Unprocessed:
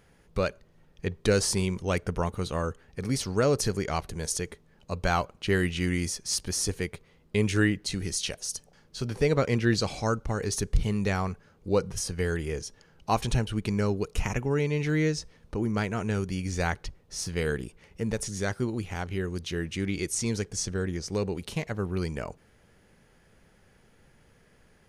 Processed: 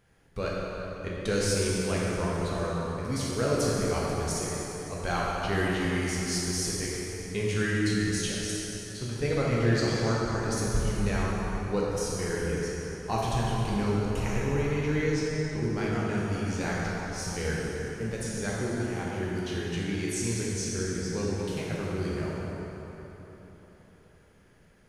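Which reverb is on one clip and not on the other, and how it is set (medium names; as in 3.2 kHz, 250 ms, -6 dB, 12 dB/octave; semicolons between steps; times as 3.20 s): plate-style reverb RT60 4 s, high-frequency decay 0.65×, DRR -6 dB; trim -7 dB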